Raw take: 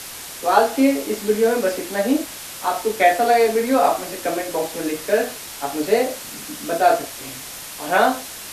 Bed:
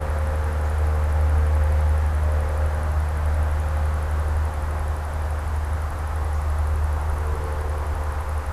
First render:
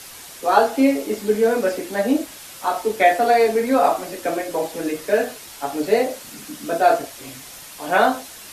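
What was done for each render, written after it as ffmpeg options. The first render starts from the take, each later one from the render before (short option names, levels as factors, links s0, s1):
-af "afftdn=nr=6:nf=-35"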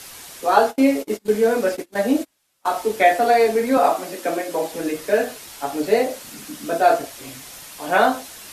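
-filter_complex "[0:a]asettb=1/sr,asplit=3[s0][s1][s2];[s0]atrim=end=0.564[s3];[s1]atrim=start=0.56:end=2.66,asetpts=PTS-STARTPTS,afade=t=in:d=0.004:c=qsin,afade=t=out:st=2.096:d=0.004:c=qsin,agate=range=0.0316:threshold=0.0398:ratio=16:release=100:detection=peak[s4];[s2]atrim=start=2.656[s5];[s3][s4]acrossfade=d=0.004:c1=hsin:c2=qsin[s6];[s6][s5]acrossfade=d=0.004:c1=qsin:c2=hsin,asettb=1/sr,asplit=3[s7][s8][s9];[s7]atrim=end=3.774[s10];[s8]atrim=start=3.77:end=4.72,asetpts=PTS-STARTPTS,afade=t=in:d=0.004:c=qsin,afade=t=out:st=0.946:d=0.004:c=qsin,highpass=f=150:w=0.5412,highpass=f=150:w=1.3066[s11];[s9]atrim=start=4.716[s12];[s10][s11]acrossfade=d=0.004:c1=hsin:c2=qsin[s13];[s13][s12]acrossfade=d=0.004:c1=qsin:c2=hsin"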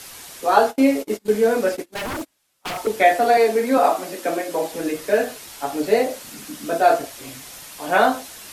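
-filter_complex "[0:a]asettb=1/sr,asplit=3[s0][s1][s2];[s0]atrim=end=1.854[s3];[s1]atrim=start=1.85:end=2.87,asetpts=PTS-STARTPTS,afade=t=in:d=0.004:c=qsin,afade=t=out:st=1.016:d=0.004:c=qsin,aeval=exprs='0.075*(abs(mod(val(0)/0.075+3,4)-2)-1)':c=same[s4];[s2]atrim=start=2.866[s5];[s3][s4]acrossfade=d=0.004:c1=hsin:c2=qsin[s6];[s6][s5]acrossfade=d=0.004:c1=qsin:c2=hsin,asettb=1/sr,asplit=3[s7][s8][s9];[s7]atrim=end=3.374[s10];[s8]atrim=start=3.37:end=3.94,asetpts=PTS-STARTPTS,afade=t=in:d=0.004:c=qsin,afade=t=out:st=0.566:d=0.004:c=qsin,highpass=f=190:w=0.5412,highpass=f=190:w=1.3066[s11];[s9]atrim=start=3.936[s12];[s10][s11]acrossfade=d=0.004:c1=hsin:c2=qsin[s13];[s13][s12]acrossfade=d=0.004:c1=qsin:c2=hsin"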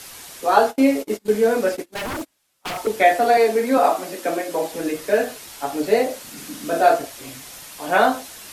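-filter_complex "[0:a]asettb=1/sr,asplit=3[s0][s1][s2];[s0]atrim=end=6.334[s3];[s1]atrim=start=6.33:end=6.89,asetpts=PTS-STARTPTS,afade=t=in:d=0.004:c=qsin,afade=t=out:st=0.556:d=0.004:c=qsin,asplit=2[s4][s5];[s5]adelay=41,volume=0.562[s6];[s4][s6]amix=inputs=2:normalize=0,atrim=end_sample=24696[s7];[s2]atrim=start=6.886[s8];[s3][s7]acrossfade=d=0.004:c1=hsin:c2=qsin[s9];[s9][s8]acrossfade=d=0.004:c1=qsin:c2=hsin"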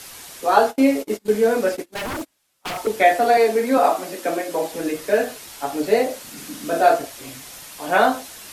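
-af anull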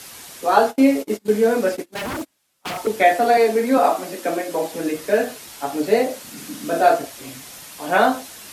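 -af "highpass=46,equalizer=f=210:w=1.5:g=3"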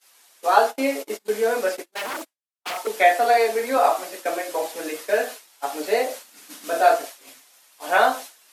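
-af "agate=range=0.0224:threshold=0.0398:ratio=3:detection=peak,highpass=540"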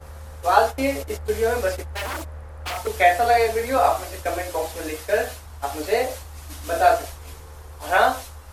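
-filter_complex "[1:a]volume=0.168[s0];[0:a][s0]amix=inputs=2:normalize=0"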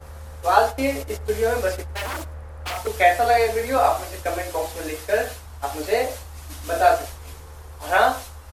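-filter_complex "[0:a]asplit=2[s0][s1];[s1]adelay=105,volume=0.0794,highshelf=f=4000:g=-2.36[s2];[s0][s2]amix=inputs=2:normalize=0"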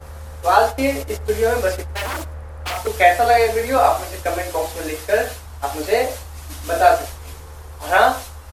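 -af "volume=1.5,alimiter=limit=0.891:level=0:latency=1"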